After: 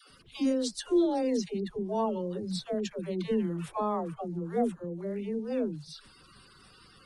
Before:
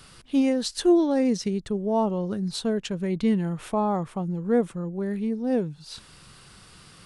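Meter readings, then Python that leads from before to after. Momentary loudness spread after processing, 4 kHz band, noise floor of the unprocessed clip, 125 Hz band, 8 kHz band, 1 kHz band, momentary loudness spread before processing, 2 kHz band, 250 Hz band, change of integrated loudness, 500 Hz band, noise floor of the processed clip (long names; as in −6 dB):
9 LU, −6.0 dB, −51 dBFS, −7.5 dB, −5.5 dB, −4.5 dB, 9 LU, −7.5 dB, −7.0 dB, −6.0 dB, −5.0 dB, −58 dBFS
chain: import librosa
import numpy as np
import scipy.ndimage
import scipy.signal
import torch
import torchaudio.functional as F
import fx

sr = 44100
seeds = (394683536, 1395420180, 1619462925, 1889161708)

y = fx.spec_quant(x, sr, step_db=30)
y = fx.dispersion(y, sr, late='lows', ms=102.0, hz=440.0)
y = y * librosa.db_to_amplitude(-5.5)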